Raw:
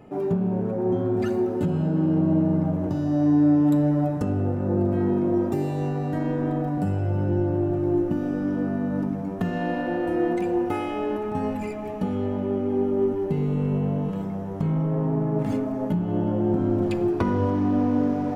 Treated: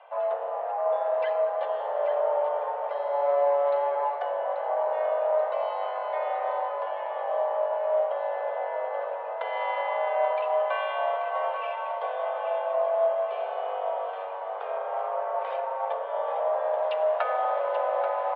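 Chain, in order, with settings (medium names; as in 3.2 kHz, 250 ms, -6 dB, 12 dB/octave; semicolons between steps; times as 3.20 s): octave divider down 1 oct, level +1 dB; mistuned SSB +270 Hz 330–3400 Hz; feedback delay 834 ms, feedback 58%, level -9.5 dB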